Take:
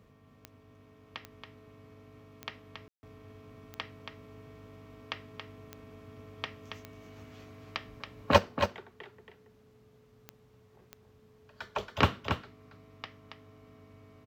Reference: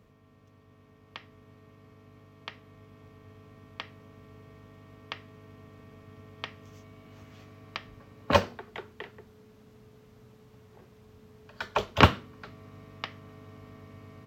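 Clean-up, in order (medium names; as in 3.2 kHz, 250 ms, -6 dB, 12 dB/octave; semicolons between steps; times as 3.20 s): de-click; room tone fill 2.88–3.03 s; inverse comb 277 ms -7 dB; trim 0 dB, from 8.38 s +7 dB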